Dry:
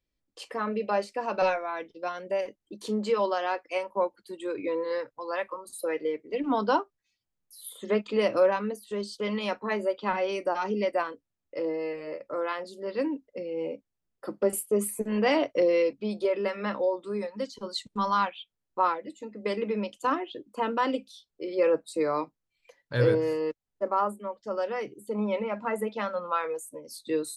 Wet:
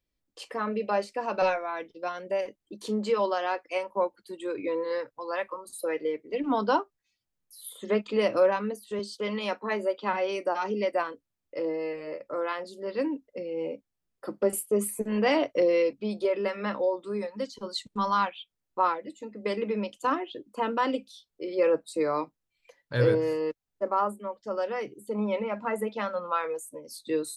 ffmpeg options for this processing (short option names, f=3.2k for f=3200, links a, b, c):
-filter_complex "[0:a]asettb=1/sr,asplit=3[a][b][c];[a]atrim=end=8.994[d];[b]atrim=start=8.99:end=10.92,asetpts=PTS-STARTPTS,afade=t=in:d=0.004:c=qsin,afade=t=out:st=1.926:d=0.004:c=qsin,highpass=190[e];[c]atrim=start=10.916[f];[d][e]acrossfade=d=0.004:c1=hsin:c2=qsin[g];[g][f]acrossfade=d=0.004:c1=qsin:c2=hsin"